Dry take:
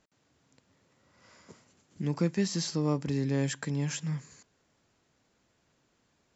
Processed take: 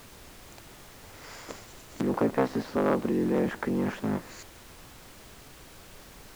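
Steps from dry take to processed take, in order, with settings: cycle switcher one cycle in 3, inverted; HPF 270 Hz 12 dB/oct; in parallel at -3 dB: negative-ratio compressor -40 dBFS; on the sum: treble ducked by the level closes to 1300 Hz, closed at -31.5 dBFS; added noise pink -55 dBFS; gain +5.5 dB

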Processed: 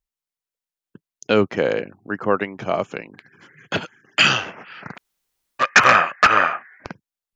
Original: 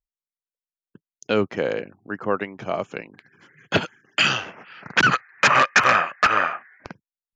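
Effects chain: 2.93–4.19 compressor 2:1, threshold -30 dBFS, peak gain reduction 9 dB; 4.95–5.62 room tone, crossfade 0.06 s; gain +4 dB

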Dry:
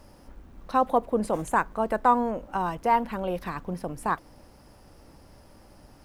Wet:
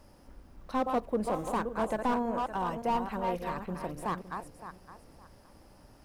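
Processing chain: regenerating reverse delay 0.282 s, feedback 46%, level -7 dB; slew limiter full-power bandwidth 77 Hz; gain -5 dB

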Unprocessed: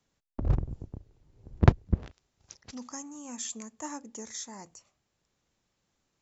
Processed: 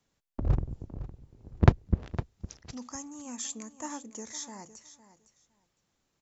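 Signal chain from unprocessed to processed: feedback echo 0.509 s, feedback 17%, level -14.5 dB

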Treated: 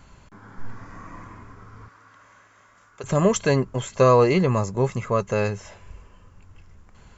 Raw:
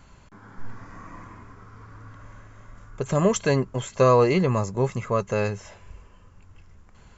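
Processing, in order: 1.88–3.04 HPF 1100 Hz 6 dB/oct; gain +1.5 dB

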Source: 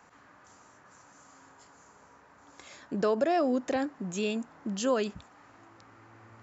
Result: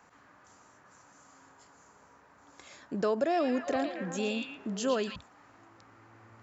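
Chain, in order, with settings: 3.13–5.16 delay with a stepping band-pass 0.114 s, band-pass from 3200 Hz, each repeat -0.7 oct, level 0 dB; gain -2 dB

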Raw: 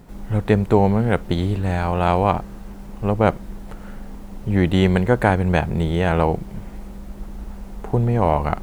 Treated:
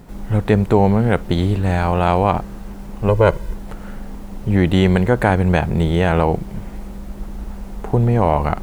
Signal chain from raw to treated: 3.08–3.54 comb 2 ms, depth 89%; in parallel at +0.5 dB: limiter -10.5 dBFS, peak gain reduction 9 dB; on the sum: gain -2.5 dB

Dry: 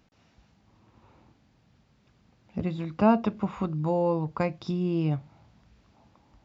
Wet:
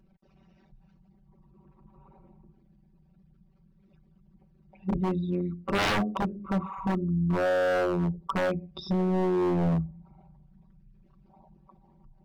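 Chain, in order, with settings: formant sharpening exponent 2; granular stretch 1.9×, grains 22 ms; wavefolder -25 dBFS; gain +4.5 dB

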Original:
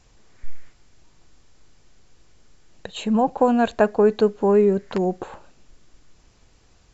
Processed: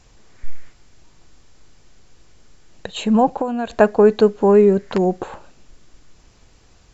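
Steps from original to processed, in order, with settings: 3.28–3.7 compressor 4:1, threshold -26 dBFS, peak gain reduction 11.5 dB; gain +4.5 dB

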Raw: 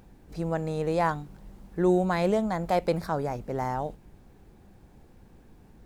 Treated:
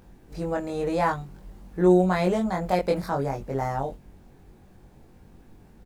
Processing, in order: doubler 22 ms -2 dB

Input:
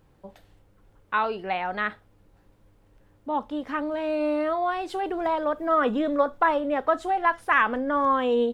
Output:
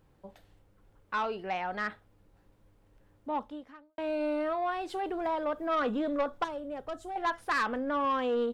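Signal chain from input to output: soft clip -18.5 dBFS, distortion -14 dB; 3.37–3.98 fade out quadratic; 6.44–7.16 graphic EQ 125/250/500/1000/2000/4000 Hz +6/-7/-3/-9/-10/-6 dB; gain -4.5 dB

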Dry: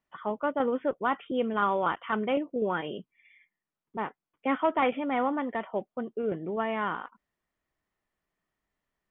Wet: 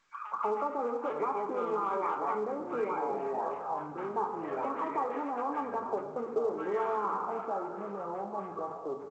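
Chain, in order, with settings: nonlinear frequency compression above 1300 Hz 1.5:1; dynamic EQ 650 Hz, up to -5 dB, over -40 dBFS, Q 2.7; limiter -25 dBFS, peak gain reduction 10 dB; soft clip -31 dBFS, distortion -14 dB; on a send at -3 dB: reverb RT60 1.0 s, pre-delay 3 ms; on the sum: echoes that change speed 0.55 s, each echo -6 st, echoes 3, each echo -6 dB; compressor 5:1, threshold -37 dBFS, peak gain reduction 8.5 dB; speaker cabinet 340–2600 Hz, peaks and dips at 430 Hz +9 dB, 840 Hz +8 dB, 1200 Hz +10 dB, 1800 Hz -5 dB; bands offset in time highs, lows 0.19 s, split 1400 Hz; gain +4.5 dB; A-law 128 kbps 16000 Hz

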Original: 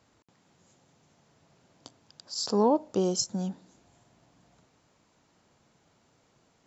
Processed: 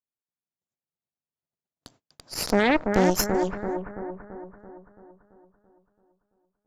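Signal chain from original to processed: gate -58 dBFS, range -39 dB; added harmonics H 5 -17 dB, 6 -8 dB, 7 -19 dB, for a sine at -12 dBFS; analogue delay 0.335 s, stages 4096, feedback 54%, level -5 dB

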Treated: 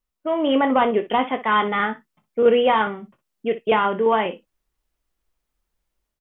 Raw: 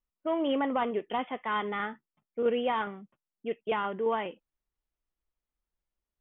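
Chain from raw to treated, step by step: AGC gain up to 5.5 dB; on a send: early reflections 23 ms -11.5 dB, 60 ms -14.5 dB; on the sum: gain +5.5 dB

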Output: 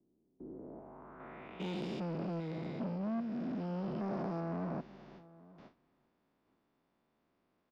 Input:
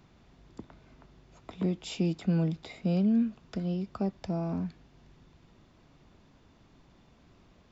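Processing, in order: stepped spectrum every 0.4 s; gate with hold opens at -50 dBFS; low-pass sweep 340 Hz -> 5200 Hz, 0.43–1.87; vocal rider 0.5 s; soft clip -36 dBFS, distortion -10 dB; three-band isolator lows -16 dB, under 200 Hz, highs -16 dB, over 2400 Hz; outdoor echo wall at 150 m, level -20 dB; gain +5.5 dB

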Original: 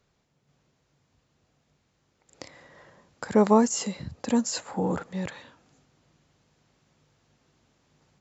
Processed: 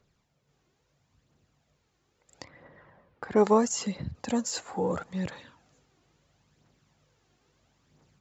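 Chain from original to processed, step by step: phaser 0.75 Hz, delay 2.9 ms, feedback 43%; 2.44–4.15 low-pass opened by the level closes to 2000 Hz, open at -18 dBFS; gain -2.5 dB

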